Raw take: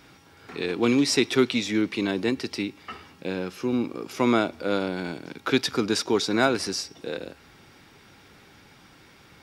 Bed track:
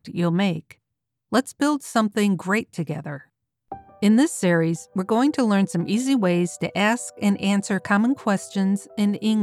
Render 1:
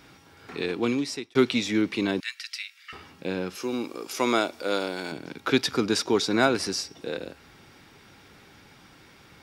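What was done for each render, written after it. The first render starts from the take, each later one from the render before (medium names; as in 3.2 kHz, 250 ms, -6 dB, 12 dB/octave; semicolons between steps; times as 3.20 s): 0.61–1.35 s: fade out; 2.20–2.93 s: steep high-pass 1.5 kHz; 3.55–5.12 s: tone controls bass -12 dB, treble +8 dB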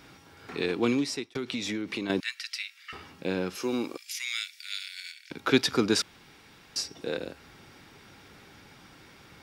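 1.22–2.10 s: compression 12:1, threshold -28 dBFS; 3.97–5.31 s: elliptic high-pass 1.9 kHz, stop band 60 dB; 6.02–6.76 s: room tone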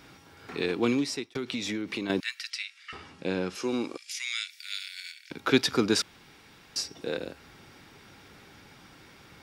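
2.50–4.50 s: low-pass 10 kHz 24 dB/octave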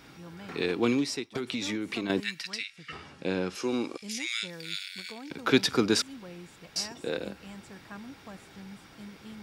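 add bed track -25 dB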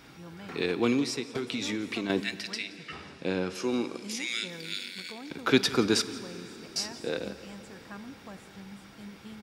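delay 173 ms -19.5 dB; plate-style reverb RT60 4.6 s, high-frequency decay 0.8×, DRR 13.5 dB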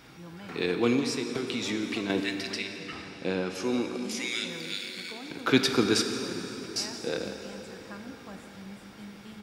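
plate-style reverb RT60 4.1 s, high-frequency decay 0.75×, DRR 5.5 dB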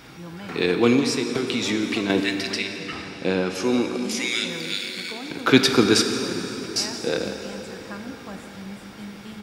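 trim +7 dB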